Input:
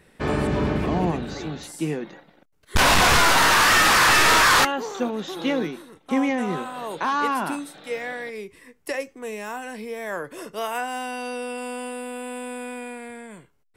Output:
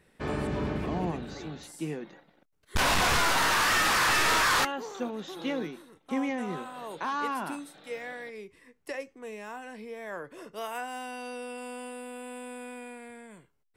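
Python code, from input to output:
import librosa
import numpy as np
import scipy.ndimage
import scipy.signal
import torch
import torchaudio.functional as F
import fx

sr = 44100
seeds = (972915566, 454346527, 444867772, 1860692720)

y = fx.high_shelf(x, sr, hz=fx.line((8.27, 11000.0), (10.54, 6000.0)), db=-9.5, at=(8.27, 10.54), fade=0.02)
y = y * 10.0 ** (-8.0 / 20.0)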